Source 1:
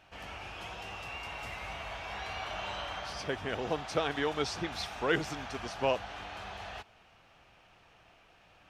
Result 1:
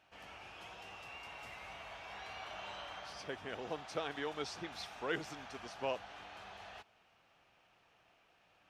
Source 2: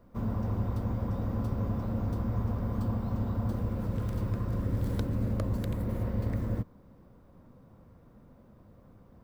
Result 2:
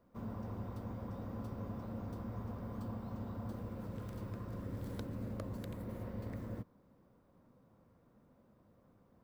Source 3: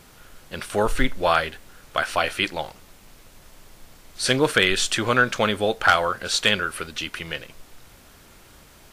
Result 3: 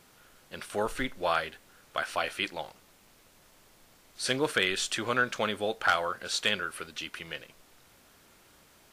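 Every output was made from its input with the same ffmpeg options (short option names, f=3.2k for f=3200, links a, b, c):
-af "lowshelf=f=92:g=-12,volume=-8dB"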